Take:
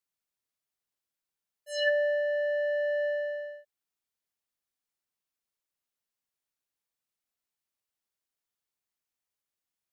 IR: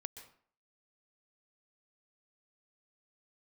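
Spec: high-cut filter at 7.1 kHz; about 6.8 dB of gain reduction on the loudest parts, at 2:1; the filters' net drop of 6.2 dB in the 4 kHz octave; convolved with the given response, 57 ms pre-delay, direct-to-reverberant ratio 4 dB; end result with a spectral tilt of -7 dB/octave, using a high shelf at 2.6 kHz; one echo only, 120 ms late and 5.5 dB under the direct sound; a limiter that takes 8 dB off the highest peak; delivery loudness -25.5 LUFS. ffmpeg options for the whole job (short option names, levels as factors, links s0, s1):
-filter_complex "[0:a]lowpass=7100,highshelf=f=2600:g=-4,equalizer=f=4000:t=o:g=-6,acompressor=threshold=0.0158:ratio=2,alimiter=level_in=2.82:limit=0.0631:level=0:latency=1,volume=0.355,aecho=1:1:120:0.531,asplit=2[s0][s1];[1:a]atrim=start_sample=2205,adelay=57[s2];[s1][s2]afir=irnorm=-1:irlink=0,volume=0.944[s3];[s0][s3]amix=inputs=2:normalize=0,volume=10.6"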